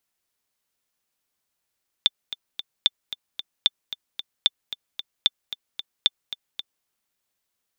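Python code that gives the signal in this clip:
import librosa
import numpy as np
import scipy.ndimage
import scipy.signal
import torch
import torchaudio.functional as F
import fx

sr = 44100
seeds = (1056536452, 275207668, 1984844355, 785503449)

y = fx.click_track(sr, bpm=225, beats=3, bars=6, hz=3540.0, accent_db=14.0, level_db=-3.5)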